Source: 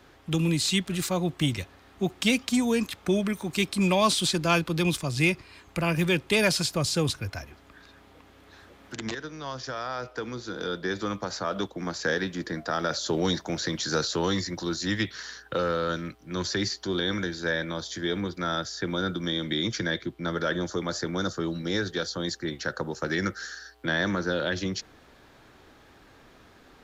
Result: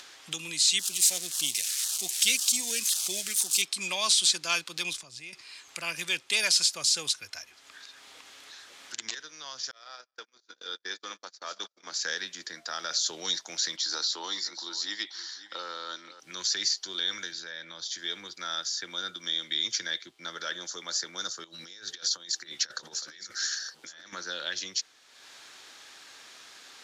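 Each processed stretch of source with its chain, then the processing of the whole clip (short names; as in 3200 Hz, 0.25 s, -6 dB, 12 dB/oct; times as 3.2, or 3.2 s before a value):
0.79–3.62 switching spikes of -20 dBFS + HPF 130 Hz + LFO notch saw down 1.9 Hz 700–2500 Hz
4.93–5.33 tilt -2 dB/oct + compressor 10:1, threshold -31 dBFS
9.71–11.92 regenerating reverse delay 0.101 s, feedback 63%, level -13 dB + gate -32 dBFS, range -43 dB + BPF 230–7100 Hz
13.76–16.2 speaker cabinet 280–7000 Hz, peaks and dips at 310 Hz +5 dB, 490 Hz -4 dB, 890 Hz +5 dB, 1600 Hz -4 dB, 2600 Hz -8 dB, 6400 Hz -8 dB + echo 0.525 s -16 dB
17.32–17.98 LPF 5800 Hz + low shelf 220 Hz +7.5 dB + compressor 3:1, threshold -31 dBFS
21.44–24.13 negative-ratio compressor -35 dBFS, ratio -0.5 + echo 0.916 s -12.5 dB
whole clip: Chebyshev low-pass 6700 Hz, order 2; differentiator; upward compressor, threshold -48 dBFS; gain +8.5 dB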